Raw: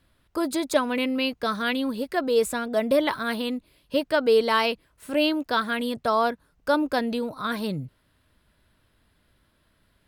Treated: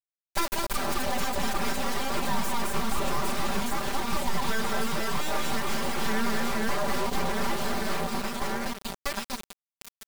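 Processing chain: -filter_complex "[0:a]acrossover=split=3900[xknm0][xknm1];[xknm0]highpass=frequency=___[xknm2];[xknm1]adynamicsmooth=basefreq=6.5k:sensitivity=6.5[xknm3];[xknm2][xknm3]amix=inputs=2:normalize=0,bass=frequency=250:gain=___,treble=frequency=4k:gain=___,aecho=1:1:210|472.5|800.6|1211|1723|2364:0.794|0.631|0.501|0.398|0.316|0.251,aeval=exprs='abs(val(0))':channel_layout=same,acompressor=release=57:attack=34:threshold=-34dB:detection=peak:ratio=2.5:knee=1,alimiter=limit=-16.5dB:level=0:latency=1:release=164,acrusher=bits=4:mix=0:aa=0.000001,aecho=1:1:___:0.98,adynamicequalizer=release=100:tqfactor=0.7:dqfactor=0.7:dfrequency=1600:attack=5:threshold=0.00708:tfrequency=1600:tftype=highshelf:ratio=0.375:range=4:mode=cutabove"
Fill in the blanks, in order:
59, -7, 15, 5.1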